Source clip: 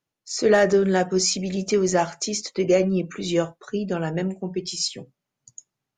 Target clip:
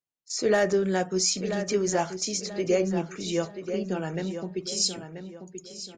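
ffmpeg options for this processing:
ffmpeg -i in.wav -filter_complex "[0:a]agate=range=-10dB:threshold=-39dB:ratio=16:detection=peak,asetnsamples=nb_out_samples=441:pad=0,asendcmd='4.72 highshelf g 11.5',highshelf=frequency=5400:gain=5.5,asplit=2[link_01][link_02];[link_02]adelay=984,lowpass=frequency=3800:poles=1,volume=-9dB,asplit=2[link_03][link_04];[link_04]adelay=984,lowpass=frequency=3800:poles=1,volume=0.34,asplit=2[link_05][link_06];[link_06]adelay=984,lowpass=frequency=3800:poles=1,volume=0.34,asplit=2[link_07][link_08];[link_08]adelay=984,lowpass=frequency=3800:poles=1,volume=0.34[link_09];[link_01][link_03][link_05][link_07][link_09]amix=inputs=5:normalize=0,volume=-5.5dB" out.wav

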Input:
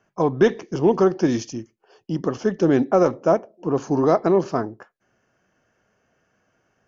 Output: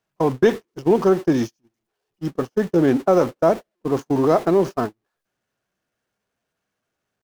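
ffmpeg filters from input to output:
ffmpeg -i in.wav -af "aeval=exprs='val(0)+0.5*0.0316*sgn(val(0))':channel_layout=same,agate=range=-44dB:threshold=-21dB:ratio=16:detection=peak,atempo=0.95" out.wav

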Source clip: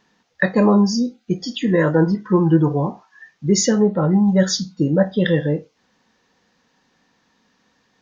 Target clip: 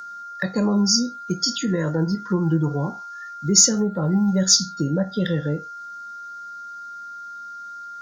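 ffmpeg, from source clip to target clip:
ffmpeg -i in.wav -filter_complex "[0:a]aeval=exprs='val(0)+0.0282*sin(2*PI*1400*n/s)':channel_layout=same,acrossover=split=210[link_01][link_02];[link_02]acompressor=threshold=-23dB:ratio=3[link_03];[link_01][link_03]amix=inputs=2:normalize=0,aexciter=amount=6.9:drive=4.5:freq=4300,volume=-2.5dB" out.wav

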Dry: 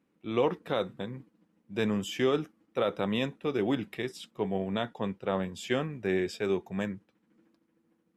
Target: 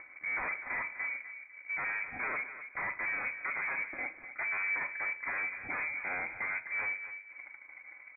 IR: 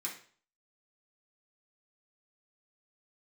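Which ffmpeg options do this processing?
-filter_complex "[0:a]highpass=frequency=50:width=0.5412,highpass=frequency=50:width=1.3066,aecho=1:1:4.1:0.5,acompressor=mode=upward:threshold=-29dB:ratio=2.5,aeval=exprs='0.0398*(abs(mod(val(0)/0.0398+3,4)-2)-1)':channel_layout=same,aeval=exprs='0.0398*(cos(1*acos(clip(val(0)/0.0398,-1,1)))-cos(1*PI/2))+0.00398*(cos(7*acos(clip(val(0)/0.0398,-1,1)))-cos(7*PI/2))':channel_layout=same,asoftclip=type=tanh:threshold=-35.5dB,asplit=2[link_01][link_02];[link_02]adelay=251,lowpass=frequency=1200:poles=1,volume=-9.5dB,asplit=2[link_03][link_04];[link_04]adelay=251,lowpass=frequency=1200:poles=1,volume=0.29,asplit=2[link_05][link_06];[link_06]adelay=251,lowpass=frequency=1200:poles=1,volume=0.29[link_07];[link_01][link_03][link_05][link_07]amix=inputs=4:normalize=0,asplit=2[link_08][link_09];[1:a]atrim=start_sample=2205,adelay=38[link_10];[link_09][link_10]afir=irnorm=-1:irlink=0,volume=-12.5dB[link_11];[link_08][link_11]amix=inputs=2:normalize=0,lowpass=frequency=2100:width_type=q:width=0.5098,lowpass=frequency=2100:width_type=q:width=0.6013,lowpass=frequency=2100:width_type=q:width=0.9,lowpass=frequency=2100:width_type=q:width=2.563,afreqshift=-2500,volume=3.5dB"

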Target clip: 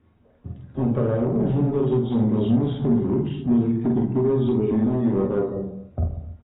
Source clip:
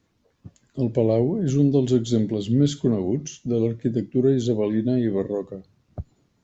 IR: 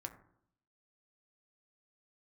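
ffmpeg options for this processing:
-filter_complex "[0:a]asplit=2[link_01][link_02];[link_02]adelay=47,volume=-2dB[link_03];[link_01][link_03]amix=inputs=2:normalize=0,aecho=1:1:260:0.0708,acompressor=threshold=-22dB:ratio=16,asettb=1/sr,asplit=3[link_04][link_05][link_06];[link_04]atrim=end=2.724[link_07];[link_05]atrim=start=2.72:end=4.72,asetpts=PTS-STARTPTS,afade=type=in:duration=0.004:curve=qsin,afade=type=out:start_time=1.996:duration=0.004:curve=qsin,asuperstop=centerf=720:order=20:qfactor=0.94[link_08];[link_06]atrim=start=4.716[link_09];[link_07][link_08]acrossfade=duration=0.004:curve1=hsin:curve2=qsin[link_10];[link_10][link_09]acrossfade=duration=0.004:curve1=qsin:curve2=hsin,volume=23dB,asoftclip=hard,volume=-23dB,lowpass=frequency=1400:poles=1[link_11];[1:a]atrim=start_sample=2205,afade=type=out:start_time=0.27:duration=0.01,atrim=end_sample=12348,asetrate=31311,aresample=44100[link_12];[link_11][link_12]afir=irnorm=-1:irlink=0,volume=7.5dB" -ar 16000 -c:a aac -b:a 16k

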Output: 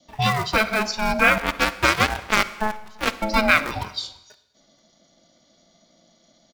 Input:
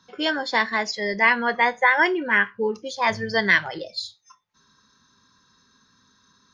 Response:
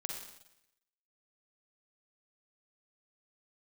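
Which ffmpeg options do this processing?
-filter_complex "[0:a]adynamicequalizer=threshold=0.0178:dfrequency=1200:dqfactor=3.1:tfrequency=1200:tqfactor=3.1:attack=5:release=100:ratio=0.375:range=2:mode=cutabove:tftype=bell,acrossover=split=450|1600[link_01][link_02][link_03];[link_01]acontrast=43[link_04];[link_02]acrusher=bits=6:dc=4:mix=0:aa=0.000001[link_05];[link_04][link_05][link_03]amix=inputs=3:normalize=0,aeval=exprs='val(0)*sin(2*PI*430*n/s)':channel_layout=same,asettb=1/sr,asplit=3[link_06][link_07][link_08];[link_06]atrim=end=1.384[link_09];[link_07]atrim=start=1.38:end=3.22,asetpts=PTS-STARTPTS,afade=type=in:duration=0.004:curve=qsin,afade=type=out:start_time=1.836:duration=0.004:curve=qsin,aeval=exprs='0.596*(cos(1*acos(clip(val(0)/0.596,-1,1)))-cos(1*PI/2))+0.0944*(cos(7*acos(clip(val(0)/0.596,-1,1)))-cos(7*PI/2))':channel_layout=same[link_10];[link_08]atrim=start=3.216[link_11];[link_09][link_10]acrossfade=duration=0.004:curve1=hsin:curve2=qsin[link_12];[link_12][link_11]acrossfade=duration=0.004:curve1=qsin:curve2=hsin,asplit=2[link_13][link_14];[link_14]adelay=338.2,volume=-27dB,highshelf=frequency=4000:gain=-7.61[link_15];[link_13][link_15]amix=inputs=2:normalize=0,asplit=2[link_16][link_17];[1:a]atrim=start_sample=2205,asetrate=39690,aresample=44100[link_18];[link_17][link_18]afir=irnorm=-1:irlink=0,volume=-10.5dB[link_19];[link_16][link_19]amix=inputs=2:normalize=0,volume=2dB"

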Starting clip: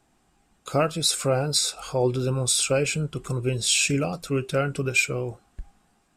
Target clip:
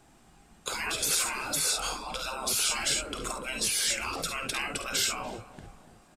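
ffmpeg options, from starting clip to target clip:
ffmpeg -i in.wav -filter_complex "[0:a]asplit=2[link_01][link_02];[link_02]aecho=0:1:51|69:0.335|0.299[link_03];[link_01][link_03]amix=inputs=2:normalize=0,afftfilt=real='re*lt(hypot(re,im),0.0708)':imag='im*lt(hypot(re,im),0.0708)':win_size=1024:overlap=0.75,asplit=2[link_04][link_05];[link_05]adelay=289,lowpass=frequency=1600:poles=1,volume=-15dB,asplit=2[link_06][link_07];[link_07]adelay=289,lowpass=frequency=1600:poles=1,volume=0.49,asplit=2[link_08][link_09];[link_09]adelay=289,lowpass=frequency=1600:poles=1,volume=0.49,asplit=2[link_10][link_11];[link_11]adelay=289,lowpass=frequency=1600:poles=1,volume=0.49,asplit=2[link_12][link_13];[link_13]adelay=289,lowpass=frequency=1600:poles=1,volume=0.49[link_14];[link_06][link_08][link_10][link_12][link_14]amix=inputs=5:normalize=0[link_15];[link_04][link_15]amix=inputs=2:normalize=0,volume=6dB" out.wav

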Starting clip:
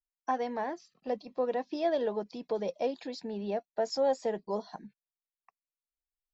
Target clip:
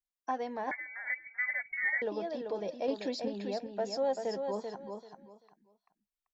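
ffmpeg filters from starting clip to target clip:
ffmpeg -i in.wav -filter_complex "[0:a]asettb=1/sr,asplit=3[link_01][link_02][link_03];[link_01]atrim=end=2.884[link_04];[link_02]atrim=start=2.88:end=3.28,asetpts=PTS-STARTPTS,afade=type=in:duration=0.004:curve=qsin,afade=type=out:start_time=0.396:duration=0.004:curve=qsin,acontrast=75[link_05];[link_03]atrim=start=3.276[link_06];[link_04][link_05]acrossfade=duration=0.004:curve1=hsin:curve2=qsin[link_07];[link_07][link_06]acrossfade=duration=0.004:curve1=qsin:curve2=hsin,asplit=2[link_08][link_09];[link_09]aecho=0:1:388|776|1164:0.501|0.11|0.0243[link_10];[link_08][link_10]amix=inputs=2:normalize=0,asettb=1/sr,asplit=3[link_11][link_12][link_13];[link_11]atrim=end=0.714[link_14];[link_12]atrim=start=0.71:end=2.02,asetpts=PTS-STARTPTS,afade=type=in:duration=0.004:curve=qsin,afade=type=out:start_time=1.306:duration=0.004:curve=qsin,lowpass=frequency=2100:width_type=q:width=0.5098,lowpass=frequency=2100:width_type=q:width=0.6013,lowpass=frequency=2100:width_type=q:width=0.9,lowpass=frequency=2100:width_type=q:width=2.563,afreqshift=-2500[link_15];[link_13]atrim=start=2.016[link_16];[link_14][link_15]acrossfade=duration=0.004:curve1=hsin:curve2=qsin[link_17];[link_17][link_16]acrossfade=duration=0.004:curve1=qsin:curve2=hsin,volume=-3.5dB" out.wav

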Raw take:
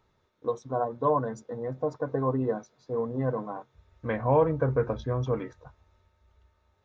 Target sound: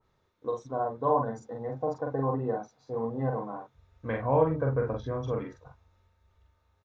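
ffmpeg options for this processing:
ffmpeg -i in.wav -filter_complex "[0:a]asettb=1/sr,asplit=3[link_01][link_02][link_03];[link_01]atrim=end=1.034[link_04];[link_02]atrim=start=1.03:end=3.45,asetpts=PTS-STARTPTS,afade=type=in:duration=0.004:curve=qsin,afade=type=out:start_time=2.416:duration=0.004:curve=qsin,equalizer=frequency=790:width_type=o:width=0.23:gain=9.5[link_05];[link_03]atrim=start=3.446[link_06];[link_04][link_05]acrossfade=duration=0.004:curve1=hsin:curve2=qsin[link_07];[link_07][link_06]acrossfade=duration=0.004:curve1=qsin:curve2=hsin,asplit=2[link_08][link_09];[link_09]adelay=44,volume=-3dB[link_10];[link_08][link_10]amix=inputs=2:normalize=0,adynamicequalizer=threshold=0.01:dfrequency=2200:dqfactor=0.7:tfrequency=2200:tqfactor=0.7:attack=5:release=100:ratio=0.375:range=2.5:mode=cutabove:tftype=highshelf,volume=-3.5dB" out.wav

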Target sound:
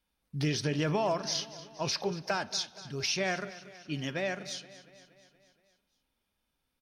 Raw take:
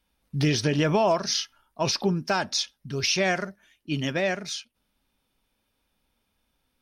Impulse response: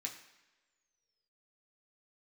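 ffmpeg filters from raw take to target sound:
-filter_complex "[0:a]asettb=1/sr,asplit=3[link_01][link_02][link_03];[link_01]atrim=end=1.914[link_04];[link_02]atrim=start=1.91:end=2.31,asetpts=PTS-STARTPTS,afade=type=in:duration=0.004:curve=qsin,afade=type=out:start_time=0.396:duration=0.004:curve=qsin,equalizer=frequency=250:width_type=o:width=1:gain=-11,equalizer=frequency=500:width_type=o:width=1:gain=8,equalizer=frequency=2000:width_type=o:width=1:gain=7[link_05];[link_03]atrim=start=2.306[link_06];[link_04][link_05]acrossfade=duration=0.004:curve1=hsin:curve2=qsin[link_07];[link_07][link_06]acrossfade=duration=0.004:curve1=qsin:curve2=hsin,aecho=1:1:236|472|708|944|1180|1416:0.141|0.0833|0.0492|0.029|0.0171|0.0101,asplit=2[link_08][link_09];[1:a]atrim=start_sample=2205,asetrate=25578,aresample=44100[link_10];[link_09][link_10]afir=irnorm=-1:irlink=0,volume=-15.5dB[link_11];[link_08][link_11]amix=inputs=2:normalize=0,volume=-8dB"

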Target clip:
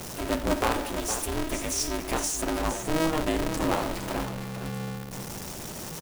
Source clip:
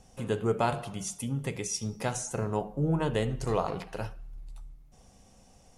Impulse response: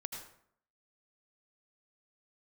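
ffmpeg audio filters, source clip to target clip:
-filter_complex "[0:a]aeval=exprs='val(0)+0.5*0.02*sgn(val(0))':channel_layout=same,acrossover=split=160[link_01][link_02];[link_02]crystalizer=i=0.5:c=0[link_03];[link_01][link_03]amix=inputs=2:normalize=0,atempo=0.96,aecho=1:1:463:0.376,aeval=exprs='val(0)*sgn(sin(2*PI*160*n/s))':channel_layout=same"

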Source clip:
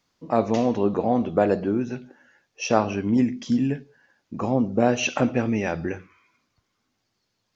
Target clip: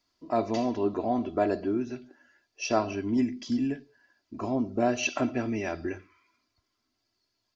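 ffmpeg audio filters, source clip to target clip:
ffmpeg -i in.wav -af "equalizer=frequency=4700:width_type=o:width=0.24:gain=8.5,aecho=1:1:3:0.67,volume=-7dB" out.wav

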